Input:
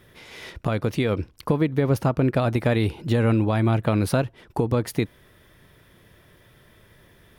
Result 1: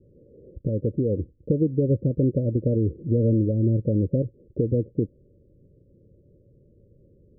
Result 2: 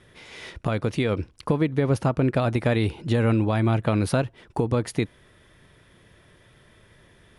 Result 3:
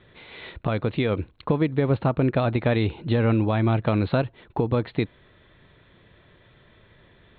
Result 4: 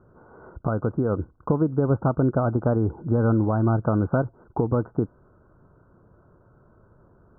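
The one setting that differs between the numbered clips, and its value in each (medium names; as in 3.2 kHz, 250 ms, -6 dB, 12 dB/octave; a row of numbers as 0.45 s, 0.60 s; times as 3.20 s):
Chebyshev low-pass, frequency: 570 Hz, 11 kHz, 4.2 kHz, 1.5 kHz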